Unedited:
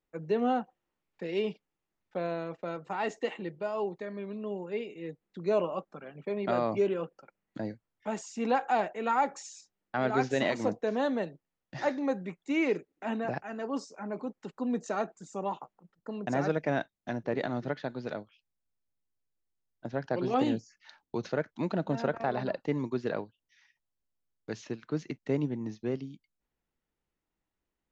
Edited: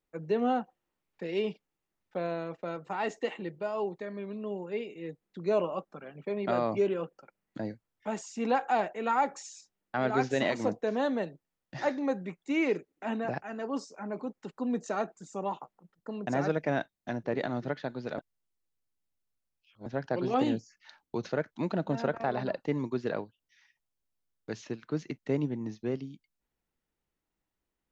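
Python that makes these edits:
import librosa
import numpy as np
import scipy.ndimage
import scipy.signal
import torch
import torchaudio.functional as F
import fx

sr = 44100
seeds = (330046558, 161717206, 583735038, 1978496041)

y = fx.edit(x, sr, fx.reverse_span(start_s=18.18, length_s=1.68), tone=tone)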